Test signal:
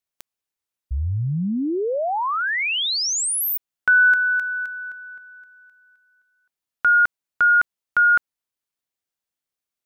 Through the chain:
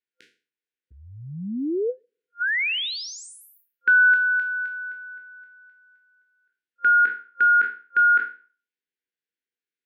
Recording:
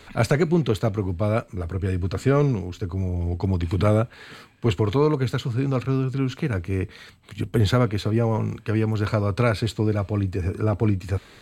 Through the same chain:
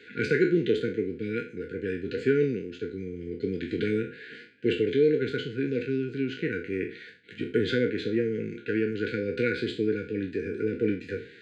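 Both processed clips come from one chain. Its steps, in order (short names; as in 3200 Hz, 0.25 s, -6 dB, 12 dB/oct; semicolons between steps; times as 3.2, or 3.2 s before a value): spectral trails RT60 0.38 s; BPF 290–2600 Hz; dynamic EQ 1000 Hz, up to -4 dB, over -35 dBFS, Q 2.5; FFT band-reject 510–1400 Hz; ending taper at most 370 dB/s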